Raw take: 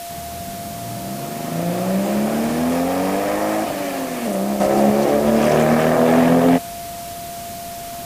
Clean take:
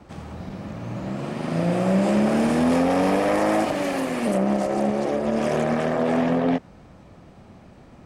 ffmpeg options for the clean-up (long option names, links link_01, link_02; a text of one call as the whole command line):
ffmpeg -i in.wav -af "bandreject=frequency=690:width=30,afwtdn=0.018,asetnsamples=nb_out_samples=441:pad=0,asendcmd='4.6 volume volume -7.5dB',volume=0dB" out.wav